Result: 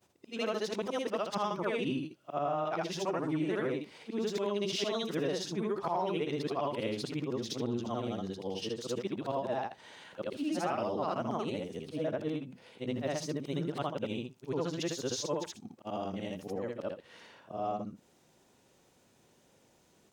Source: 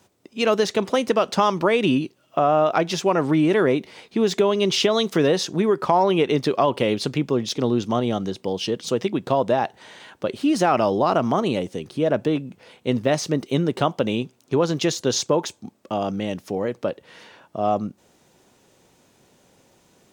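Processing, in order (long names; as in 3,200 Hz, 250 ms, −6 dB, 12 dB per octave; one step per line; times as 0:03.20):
every overlapping window played backwards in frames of 167 ms
downward compressor 1.5 to 1, threshold −34 dBFS, peak gain reduction 6.5 dB
level −5 dB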